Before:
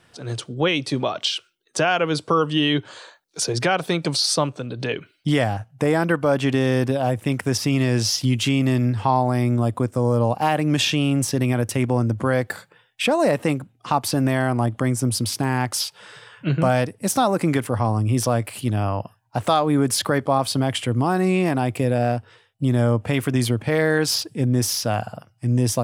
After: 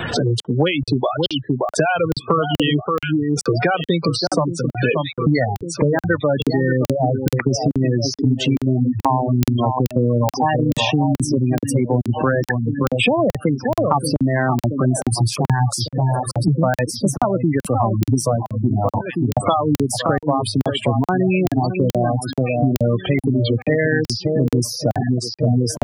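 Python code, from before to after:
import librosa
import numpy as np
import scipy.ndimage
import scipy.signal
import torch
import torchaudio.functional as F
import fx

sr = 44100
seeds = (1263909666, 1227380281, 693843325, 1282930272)

y = fx.high_shelf(x, sr, hz=4400.0, db=6.0, at=(11.68, 13.04), fade=0.02)
y = fx.echo_alternate(y, sr, ms=576, hz=1500.0, feedback_pct=69, wet_db=-7.0)
y = fx.dereverb_blind(y, sr, rt60_s=0.53)
y = fx.spec_gate(y, sr, threshold_db=-15, keep='strong')
y = fx.graphic_eq(y, sr, hz=(125, 250, 4000, 8000), db=(7, -12, 3, 7), at=(15.11, 16.48))
y = fx.buffer_crackle(y, sr, first_s=0.4, period_s=0.43, block=2048, kind='zero')
y = fx.band_squash(y, sr, depth_pct=100)
y = y * 10.0 ** (3.0 / 20.0)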